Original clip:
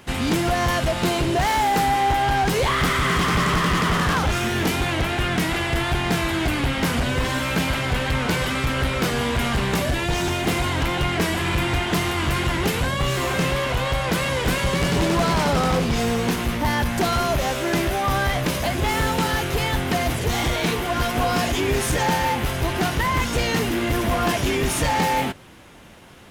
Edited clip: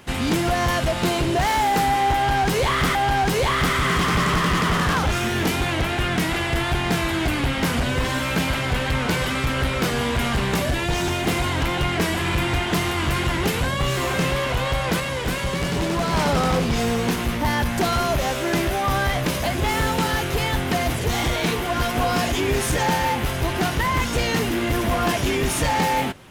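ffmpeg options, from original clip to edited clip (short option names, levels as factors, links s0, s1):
-filter_complex "[0:a]asplit=4[s0][s1][s2][s3];[s0]atrim=end=2.952[s4];[s1]atrim=start=2.148:end=14.202[s5];[s2]atrim=start=14.198:end=15.332,asetpts=PTS-STARTPTS,volume=0.708[s6];[s3]atrim=start=15.328[s7];[s4][s5]acrossfade=d=0.004:c1=hsin:c2=hsin[s8];[s8][s6]acrossfade=d=0.004:c1=hsin:c2=hsin[s9];[s9][s7]acrossfade=d=0.004:c1=hsin:c2=hsin"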